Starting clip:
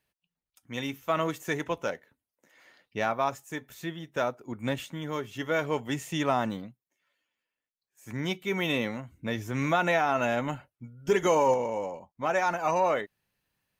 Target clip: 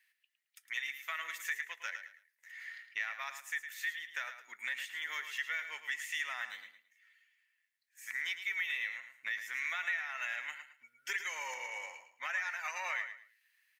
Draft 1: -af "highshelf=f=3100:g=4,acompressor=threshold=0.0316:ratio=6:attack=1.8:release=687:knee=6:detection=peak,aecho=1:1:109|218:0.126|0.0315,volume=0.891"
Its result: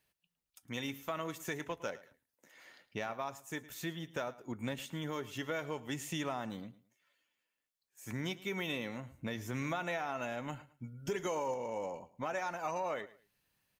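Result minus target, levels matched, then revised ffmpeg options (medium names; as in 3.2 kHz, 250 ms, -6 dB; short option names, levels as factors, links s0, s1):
2 kHz band -7.0 dB; echo-to-direct -8.5 dB
-af "highpass=f=1900:t=q:w=5.8,highshelf=f=3100:g=4,acompressor=threshold=0.0316:ratio=6:attack=1.8:release=687:knee=6:detection=peak,aecho=1:1:109|218|327:0.335|0.0837|0.0209,volume=0.891"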